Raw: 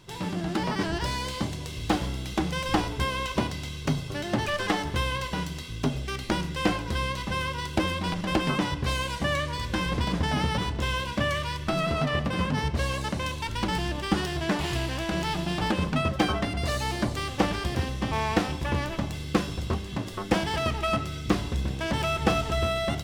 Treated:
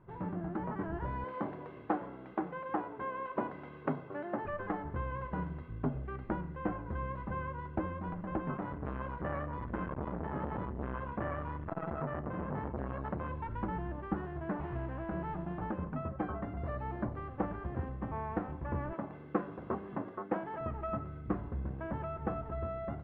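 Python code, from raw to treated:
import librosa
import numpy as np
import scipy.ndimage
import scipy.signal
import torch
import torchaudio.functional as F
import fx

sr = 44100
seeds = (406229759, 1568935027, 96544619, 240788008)

y = fx.highpass(x, sr, hz=300.0, slope=12, at=(1.24, 4.45))
y = fx.transformer_sat(y, sr, knee_hz=840.0, at=(8.54, 13.29))
y = fx.highpass(y, sr, hz=240.0, slope=12, at=(18.93, 20.61))
y = scipy.signal.sosfilt(scipy.signal.butter(4, 1500.0, 'lowpass', fs=sr, output='sos'), y)
y = fx.rider(y, sr, range_db=10, speed_s=0.5)
y = y * librosa.db_to_amplitude(-8.0)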